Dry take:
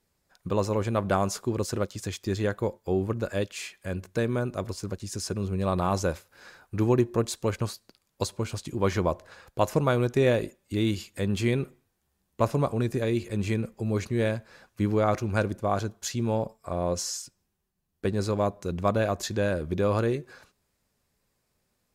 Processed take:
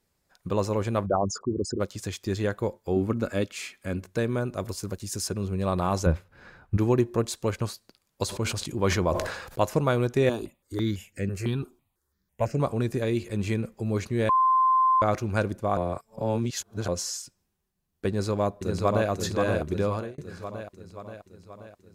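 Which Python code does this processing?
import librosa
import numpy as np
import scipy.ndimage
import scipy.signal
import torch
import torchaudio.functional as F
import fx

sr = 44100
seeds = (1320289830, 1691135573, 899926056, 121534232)

y = fx.envelope_sharpen(x, sr, power=3.0, at=(1.05, 1.79), fade=0.02)
y = fx.small_body(y, sr, hz=(250.0, 1300.0, 2200.0), ring_ms=45, db=9, at=(2.96, 4.04))
y = fx.high_shelf(y, sr, hz=9700.0, db=11.5, at=(4.6, 5.28))
y = fx.bass_treble(y, sr, bass_db=12, treble_db=-14, at=(6.06, 6.77))
y = fx.sustainer(y, sr, db_per_s=55.0, at=(8.24, 9.62))
y = fx.phaser_held(y, sr, hz=6.0, low_hz=530.0, high_hz=3600.0, at=(10.29, 12.6))
y = fx.echo_throw(y, sr, start_s=18.08, length_s=1.01, ms=530, feedback_pct=60, wet_db=-4.0)
y = fx.edit(y, sr, fx.bleep(start_s=14.29, length_s=0.73, hz=1040.0, db=-17.5),
    fx.reverse_span(start_s=15.77, length_s=1.11),
    fx.fade_out_span(start_s=19.77, length_s=0.41), tone=tone)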